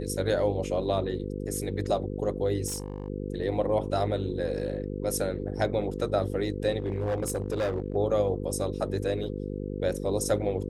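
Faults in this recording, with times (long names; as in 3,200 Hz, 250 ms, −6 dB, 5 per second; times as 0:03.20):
mains buzz 50 Hz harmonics 10 −34 dBFS
0:02.67–0:03.08: clipping −29 dBFS
0:06.78–0:07.96: clipping −24 dBFS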